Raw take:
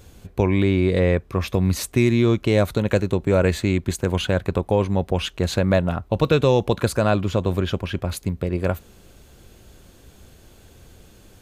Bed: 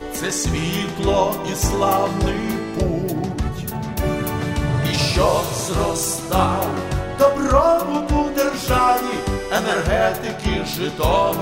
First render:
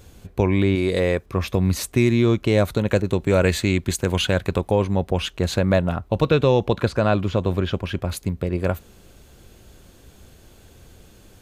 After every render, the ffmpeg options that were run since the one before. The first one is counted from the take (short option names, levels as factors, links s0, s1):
-filter_complex "[0:a]asettb=1/sr,asplit=3[s0][s1][s2];[s0]atrim=end=0.754[s3];[s1]atrim=start=0.75:end=1.26,asetpts=PTS-STARTPTS,afade=t=in:d=0.004:c=qsin,afade=t=out:st=0.506:d=0.004:c=qsin,bass=f=250:g=-6,treble=f=4000:g=9[s4];[s2]atrim=start=1.256[s5];[s3][s4]acrossfade=d=0.004:c1=hsin:c2=qsin[s6];[s6][s5]acrossfade=d=0.004:c1=qsin:c2=hsin,asettb=1/sr,asplit=3[s7][s8][s9];[s7]atrim=end=3.024[s10];[s8]atrim=start=3.02:end=4.71,asetpts=PTS-STARTPTS,afade=t=in:d=0.004:c=qsin,afade=t=out:st=1.686:d=0.004:c=qsin,adynamicequalizer=threshold=0.0178:dfrequency=1700:dqfactor=0.7:tfrequency=1700:tqfactor=0.7:attack=5:release=100:ratio=0.375:range=2.5:mode=boostabove:tftype=highshelf[s11];[s9]atrim=start=4.706[s12];[s10][s11]acrossfade=d=0.004:c1=hsin:c2=qsin[s13];[s13][s12]acrossfade=d=0.004:c1=qsin:c2=hsin,asettb=1/sr,asplit=3[s14][s15][s16];[s14]atrim=end=6.244[s17];[s15]atrim=start=6.24:end=7.85,asetpts=PTS-STARTPTS,afade=t=in:d=0.004:c=qsin,afade=t=out:st=1.606:d=0.004:c=qsin,acrossover=split=5300[s18][s19];[s19]acompressor=threshold=0.002:ratio=4:attack=1:release=60[s20];[s18][s20]amix=inputs=2:normalize=0[s21];[s16]atrim=start=7.846[s22];[s17][s21]acrossfade=d=0.004:c1=hsin:c2=qsin[s23];[s23][s22]acrossfade=d=0.004:c1=qsin:c2=hsin"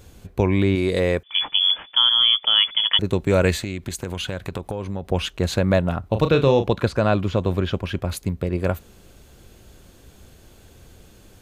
-filter_complex "[0:a]asettb=1/sr,asplit=3[s0][s1][s2];[s0]atrim=end=1.234[s3];[s1]atrim=start=1.23:end=2.99,asetpts=PTS-STARTPTS,afade=t=in:d=0.004:c=qsin,afade=t=out:st=1.756:d=0.004:c=qsin,lowpass=f=3000:t=q:w=0.5098,lowpass=f=3000:t=q:w=0.6013,lowpass=f=3000:t=q:w=0.9,lowpass=f=3000:t=q:w=2.563,afreqshift=-3500[s4];[s2]atrim=start=2.986[s5];[s3][s4]acrossfade=d=0.004:c1=hsin:c2=qsin[s6];[s6][s5]acrossfade=d=0.004:c1=qsin:c2=hsin,asettb=1/sr,asplit=3[s7][s8][s9];[s7]atrim=end=3.554[s10];[s8]atrim=start=3.55:end=5.05,asetpts=PTS-STARTPTS,afade=t=in:d=0.004:c=qsin,afade=t=out:st=1.496:d=0.004:c=qsin,acompressor=threshold=0.0631:ratio=6:attack=3.2:release=140:knee=1:detection=peak[s11];[s9]atrim=start=5.046[s12];[s10][s11]acrossfade=d=0.004:c1=hsin:c2=qsin[s13];[s13][s12]acrossfade=d=0.004:c1=qsin:c2=hsin,asettb=1/sr,asplit=3[s14][s15][s16];[s14]atrim=end=6.004[s17];[s15]atrim=start=6:end=6.69,asetpts=PTS-STARTPTS,afade=t=in:d=0.004:c=qsin,afade=t=out:st=0.686:d=0.004:c=qsin,asplit=2[s18][s19];[s19]adelay=36,volume=0.376[s20];[s18][s20]amix=inputs=2:normalize=0,atrim=end_sample=30429[s21];[s16]atrim=start=6.686[s22];[s17][s21]acrossfade=d=0.004:c1=hsin:c2=qsin[s23];[s23][s22]acrossfade=d=0.004:c1=qsin:c2=hsin"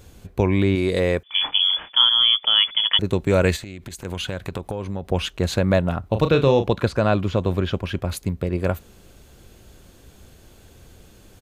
-filter_complex "[0:a]asplit=3[s0][s1][s2];[s0]afade=t=out:st=1.29:d=0.02[s3];[s1]asplit=2[s4][s5];[s5]adelay=31,volume=0.668[s6];[s4][s6]amix=inputs=2:normalize=0,afade=t=in:st=1.29:d=0.02,afade=t=out:st=2.04:d=0.02[s7];[s2]afade=t=in:st=2.04:d=0.02[s8];[s3][s7][s8]amix=inputs=3:normalize=0,asettb=1/sr,asplit=3[s9][s10][s11];[s9]atrim=end=3.564[s12];[s10]atrim=start=3.56:end=4.05,asetpts=PTS-STARTPTS,afade=t=in:d=0.004:c=qsin,afade=t=out:st=0.486:d=0.004:c=qsin,acompressor=threshold=0.0282:ratio=6:attack=3.2:release=140:knee=1:detection=peak[s13];[s11]atrim=start=4.046[s14];[s12][s13]acrossfade=d=0.004:c1=hsin:c2=qsin[s15];[s15][s14]acrossfade=d=0.004:c1=qsin:c2=hsin"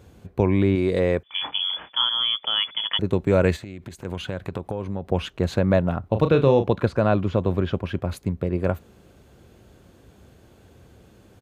-af "highpass=74,highshelf=f=2600:g=-11"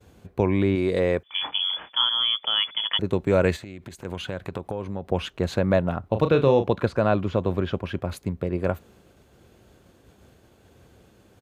-af "agate=range=0.0224:threshold=0.00355:ratio=3:detection=peak,lowshelf=f=260:g=-4"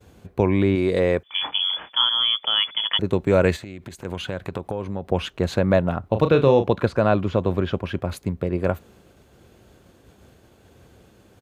-af "volume=1.33"